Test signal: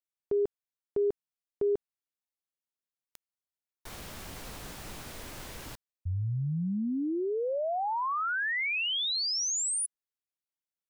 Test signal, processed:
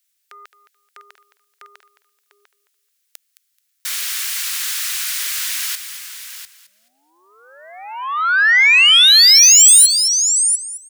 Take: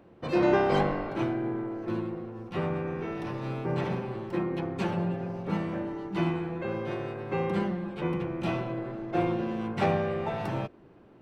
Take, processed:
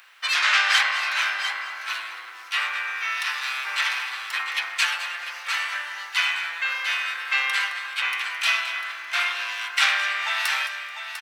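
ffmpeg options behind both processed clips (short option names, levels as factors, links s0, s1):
-filter_complex "[0:a]highshelf=f=3300:g=8,asplit=2[s0][s1];[s1]aecho=0:1:698:0.316[s2];[s0][s2]amix=inputs=2:normalize=0,aeval=exprs='0.282*sin(PI/2*2.82*val(0)/0.282)':c=same,highpass=f=1500:w=0.5412,highpass=f=1500:w=1.3066,asplit=2[s3][s4];[s4]aecho=0:1:216|432|648:0.211|0.0486|0.0112[s5];[s3][s5]amix=inputs=2:normalize=0,volume=1.88"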